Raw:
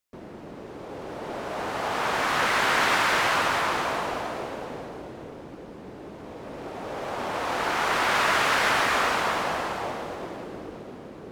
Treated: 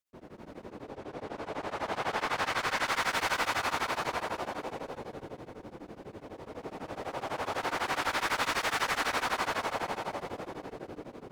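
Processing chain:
0:00.66–0:02.86: high-shelf EQ 9,700 Hz −11.5 dB
gain into a clipping stage and back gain 24 dB
reverb whose tail is shaped and stops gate 320 ms rising, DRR −2 dB
tremolo along a rectified sine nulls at 12 Hz
level −5.5 dB

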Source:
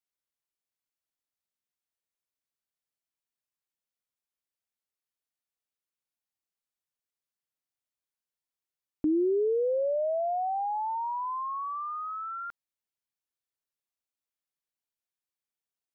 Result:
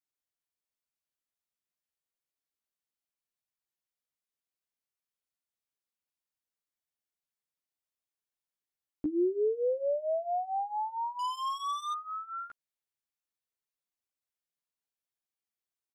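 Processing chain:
0:11.19–0:11.93: leveller curve on the samples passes 3
double-tracking delay 14 ms −2.5 dB
level −5 dB

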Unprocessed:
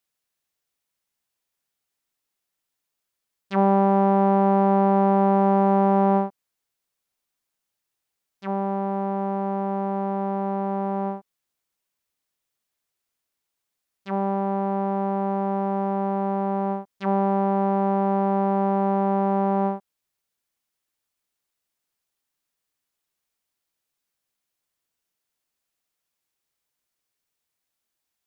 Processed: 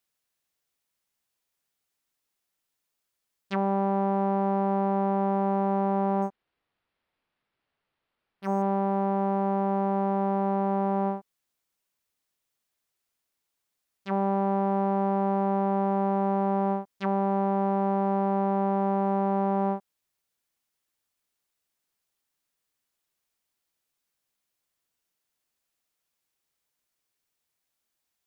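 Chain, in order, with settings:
brickwall limiter −16.5 dBFS, peak gain reduction 8 dB
0:06.22–0:08.62: linearly interpolated sample-rate reduction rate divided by 6×

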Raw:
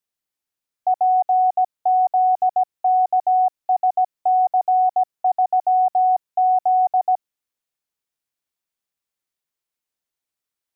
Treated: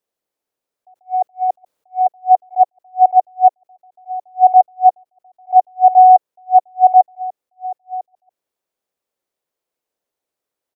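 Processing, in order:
parametric band 500 Hz +14 dB 1.9 octaves
0:00.94–0:02.08: compressor whose output falls as the input rises −15 dBFS, ratio −1
on a send: single-tap delay 1,139 ms −16.5 dB
on the sum: level that may rise only so fast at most 400 dB per second

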